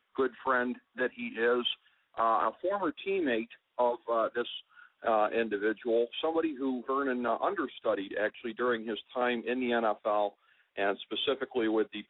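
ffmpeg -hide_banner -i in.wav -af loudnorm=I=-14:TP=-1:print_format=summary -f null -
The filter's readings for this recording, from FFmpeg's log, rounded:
Input Integrated:    -31.5 LUFS
Input True Peak:     -16.0 dBTP
Input LRA:             1.0 LU
Input Threshold:     -41.7 LUFS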